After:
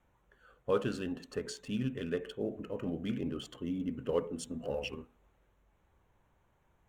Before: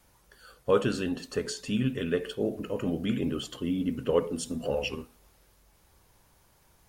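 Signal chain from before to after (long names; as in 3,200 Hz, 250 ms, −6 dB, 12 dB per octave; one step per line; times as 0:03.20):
adaptive Wiener filter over 9 samples
level −6.5 dB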